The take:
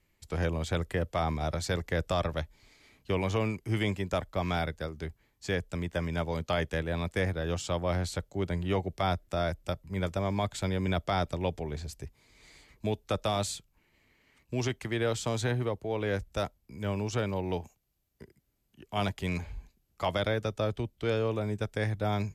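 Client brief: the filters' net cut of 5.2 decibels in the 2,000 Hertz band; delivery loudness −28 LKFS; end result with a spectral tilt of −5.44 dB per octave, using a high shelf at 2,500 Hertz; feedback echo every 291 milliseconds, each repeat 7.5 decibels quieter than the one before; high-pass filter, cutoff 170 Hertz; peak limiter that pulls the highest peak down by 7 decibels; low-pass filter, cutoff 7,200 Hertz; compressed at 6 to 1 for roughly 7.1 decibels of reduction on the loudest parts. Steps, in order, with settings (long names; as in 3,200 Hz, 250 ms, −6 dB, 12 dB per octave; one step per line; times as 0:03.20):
high-pass filter 170 Hz
low-pass filter 7,200 Hz
parametric band 2,000 Hz −3.5 dB
high-shelf EQ 2,500 Hz −7 dB
downward compressor 6 to 1, threshold −34 dBFS
brickwall limiter −29.5 dBFS
repeating echo 291 ms, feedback 42%, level −7.5 dB
level +13 dB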